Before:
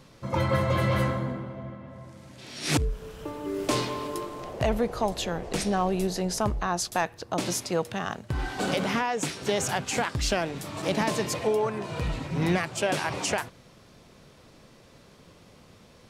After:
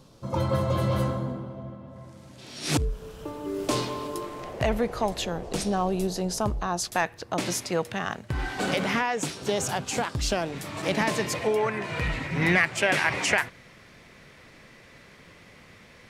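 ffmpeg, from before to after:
-af "asetnsamples=n=441:p=0,asendcmd='1.96 equalizer g -3.5;4.24 equalizer g 4;5.25 equalizer g -5.5;6.84 equalizer g 4.5;9.22 equalizer g -4;10.52 equalizer g 5.5;11.56 equalizer g 13',equalizer=f=2k:t=o:w=0.82:g=-11"

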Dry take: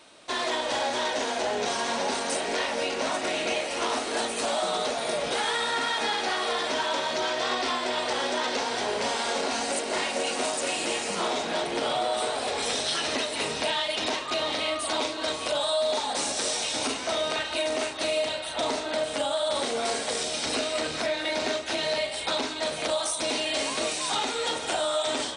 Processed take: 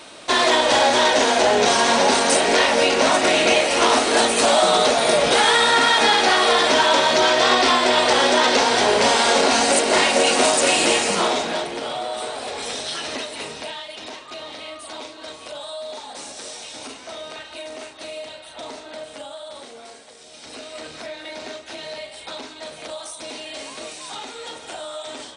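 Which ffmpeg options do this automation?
-af "volume=23dB,afade=t=out:st=10.85:d=0.91:silence=0.251189,afade=t=out:st=13.17:d=0.69:silence=0.473151,afade=t=out:st=19.04:d=1.13:silence=0.298538,afade=t=in:st=20.17:d=0.69:silence=0.266073"

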